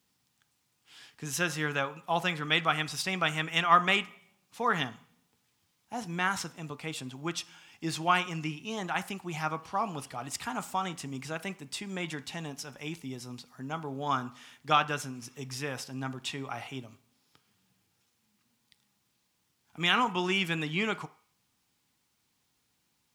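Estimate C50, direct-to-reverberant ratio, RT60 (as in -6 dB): 19.0 dB, 11.0 dB, 0.45 s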